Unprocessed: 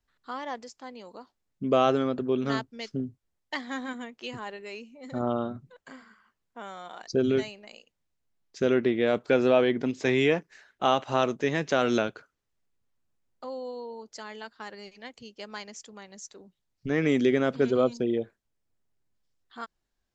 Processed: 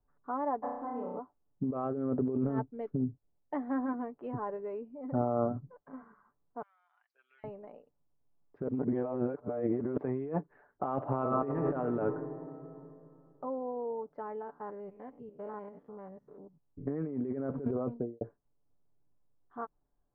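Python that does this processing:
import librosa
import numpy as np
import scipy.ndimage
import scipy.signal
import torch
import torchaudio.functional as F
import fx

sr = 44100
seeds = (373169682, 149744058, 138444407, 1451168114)

y = fx.room_flutter(x, sr, wall_m=5.6, rt60_s=0.89, at=(0.62, 1.18), fade=0.02)
y = fx.peak_eq(y, sr, hz=1100.0, db=-5.0, octaves=0.77, at=(1.84, 3.7))
y = fx.ladder_highpass(y, sr, hz=2100.0, resonance_pct=50, at=(6.62, 7.44))
y = fx.reverb_throw(y, sr, start_s=10.97, length_s=0.66, rt60_s=2.9, drr_db=3.5)
y = fx.peak_eq(y, sr, hz=4200.0, db=-9.5, octaves=1.5, at=(12.14, 13.61))
y = fx.spec_steps(y, sr, hold_ms=100, at=(14.4, 16.93), fade=0.02)
y = fx.studio_fade_out(y, sr, start_s=17.81, length_s=0.4)
y = fx.edit(y, sr, fx.fade_out_to(start_s=5.52, length_s=0.41, curve='qsin', floor_db=-7.5),
    fx.reverse_span(start_s=8.68, length_s=1.29), tone=tone)
y = scipy.signal.sosfilt(scipy.signal.butter(4, 1100.0, 'lowpass', fs=sr, output='sos'), y)
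y = y + 0.43 * np.pad(y, (int(6.9 * sr / 1000.0), 0))[:len(y)]
y = fx.over_compress(y, sr, threshold_db=-30.0, ratio=-1.0)
y = y * librosa.db_to_amplitude(-2.0)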